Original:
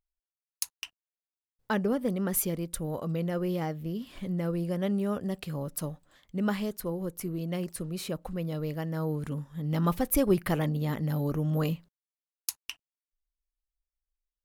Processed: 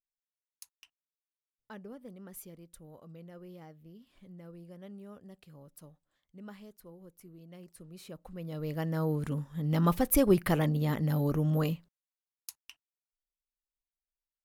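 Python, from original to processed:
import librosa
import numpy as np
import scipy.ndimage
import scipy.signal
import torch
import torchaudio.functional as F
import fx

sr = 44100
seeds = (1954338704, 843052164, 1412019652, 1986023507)

y = fx.gain(x, sr, db=fx.line((7.49, -18.5), (8.32, -10.0), (8.82, 0.5), (11.49, 0.5), (12.57, -12.5)))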